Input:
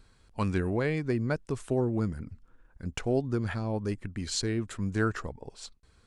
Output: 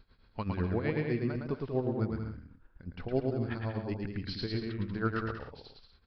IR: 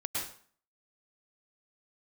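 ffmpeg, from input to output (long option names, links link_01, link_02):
-af "tremolo=f=7.9:d=0.81,aecho=1:1:110|187|240.9|278.6|305:0.631|0.398|0.251|0.158|0.1,aresample=11025,aresample=44100,volume=-1.5dB"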